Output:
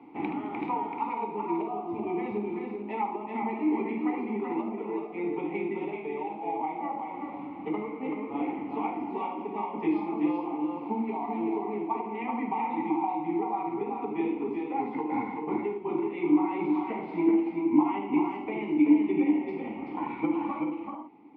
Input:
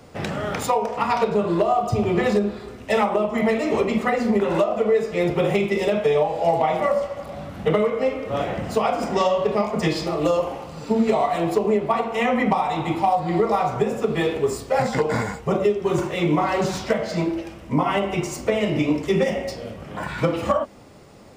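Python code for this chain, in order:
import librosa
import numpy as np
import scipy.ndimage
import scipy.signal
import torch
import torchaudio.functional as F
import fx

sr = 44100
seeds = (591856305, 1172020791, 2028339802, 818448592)

p1 = scipy.signal.sosfilt(scipy.signal.butter(2, 88.0, 'highpass', fs=sr, output='sos'), x)
p2 = fx.peak_eq(p1, sr, hz=120.0, db=-9.5, octaves=2.0)
p3 = fx.rider(p2, sr, range_db=10, speed_s=0.5)
p4 = fx.vowel_filter(p3, sr, vowel='u')
p5 = fx.air_absorb(p4, sr, metres=490.0)
p6 = p5 + fx.echo_multitap(p5, sr, ms=(75, 216, 382, 434), db=(-10.0, -17.0, -4.5, -9.5), dry=0)
y = p6 * librosa.db_to_amplitude(6.0)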